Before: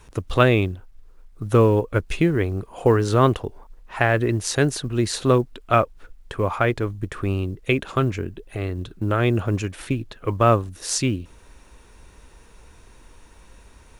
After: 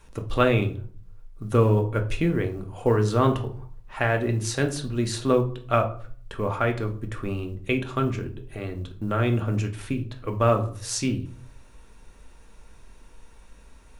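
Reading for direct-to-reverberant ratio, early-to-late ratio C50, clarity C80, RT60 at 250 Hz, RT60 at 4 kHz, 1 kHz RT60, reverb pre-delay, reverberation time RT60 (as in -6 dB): 4.0 dB, 12.0 dB, 17.5 dB, 0.75 s, 0.30 s, 0.45 s, 4 ms, 0.50 s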